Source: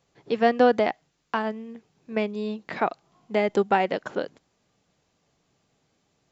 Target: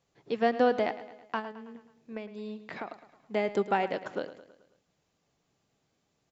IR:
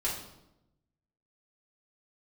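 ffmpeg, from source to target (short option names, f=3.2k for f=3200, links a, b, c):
-filter_complex "[0:a]asettb=1/sr,asplit=3[a][b][c];[a]atrim=end=1.394[d];[b]atrim=start=1.39:end=2.89,asetpts=PTS-STARTPTS,afade=t=in:d=0.004:c=qsin,afade=t=out:st=1.496:d=0.004:c=qsin,acompressor=threshold=-30dB:ratio=6[e];[c]atrim=start=2.886[f];[d][e]acrossfade=d=0.004:c1=hsin:c2=qsin[g];[g][f]acrossfade=d=0.004:c1=qsin:c2=hsin,aecho=1:1:108|216|324|432|540:0.188|0.0998|0.0529|0.028|0.0149,volume=-6dB"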